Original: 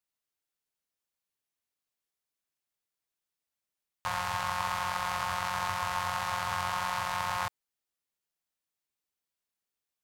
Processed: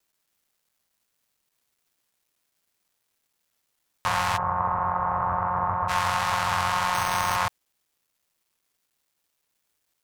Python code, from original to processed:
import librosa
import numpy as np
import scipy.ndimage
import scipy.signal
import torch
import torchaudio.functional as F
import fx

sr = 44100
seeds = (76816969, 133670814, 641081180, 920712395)

p1 = fx.law_mismatch(x, sr, coded='mu')
p2 = fx.lowpass(p1, sr, hz=1200.0, slope=24, at=(4.36, 5.88), fade=0.02)
p3 = fx.rider(p2, sr, range_db=10, speed_s=0.5)
p4 = p2 + F.gain(torch.from_numpy(p3), 2.0).numpy()
p5 = fx.resample_bad(p4, sr, factor=6, down='none', up='hold', at=(6.94, 7.36))
y = fx.doppler_dist(p5, sr, depth_ms=0.19)